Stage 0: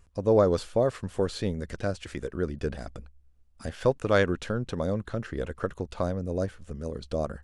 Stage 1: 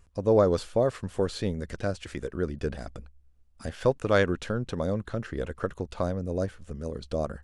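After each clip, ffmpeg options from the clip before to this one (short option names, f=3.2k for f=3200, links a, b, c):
-af anull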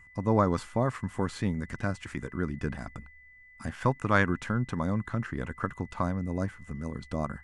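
-af "aeval=exprs='val(0)+0.00178*sin(2*PI*2000*n/s)':c=same,equalizer=f=125:t=o:w=1:g=7,equalizer=f=250:t=o:w=1:g=7,equalizer=f=500:t=o:w=1:g=-8,equalizer=f=1k:t=o:w=1:g=11,equalizer=f=2k:t=o:w=1:g=6,equalizer=f=4k:t=o:w=1:g=-4,equalizer=f=8k:t=o:w=1:g=4,volume=-5dB"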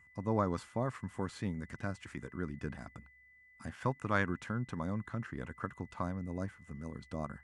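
-af "highpass=60,volume=-7.5dB"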